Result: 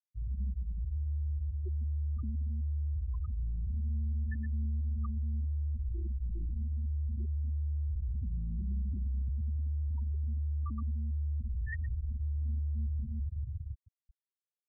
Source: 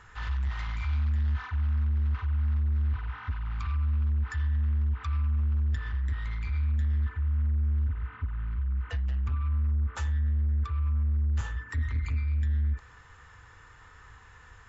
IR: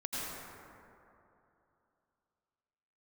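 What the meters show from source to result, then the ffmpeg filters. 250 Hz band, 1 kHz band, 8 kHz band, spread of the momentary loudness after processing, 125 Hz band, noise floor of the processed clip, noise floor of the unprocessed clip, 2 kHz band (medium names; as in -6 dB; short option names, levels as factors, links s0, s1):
-1.0 dB, -16.5 dB, no reading, 3 LU, -6.0 dB, under -85 dBFS, -53 dBFS, -12.0 dB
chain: -af "equalizer=f=190:t=o:w=2.8:g=13.5,bandreject=f=470:w=12,aresample=16000,asoftclip=type=hard:threshold=0.0335,aresample=44100,dynaudnorm=f=390:g=9:m=3.98,aphaser=in_gain=1:out_gain=1:delay=3.3:decay=0.54:speed=0.23:type=sinusoidal,lowpass=f=1800:p=1,aemphasis=mode=production:type=75fm,aecho=1:1:120|270|457.5|691.9|984.8:0.631|0.398|0.251|0.158|0.1,areverse,acompressor=threshold=0.0891:ratio=4,areverse,afftfilt=real='re*gte(hypot(re,im),0.224)':imag='im*gte(hypot(re,im),0.224)':win_size=1024:overlap=0.75,alimiter=limit=0.0891:level=0:latency=1:release=23,volume=0.376"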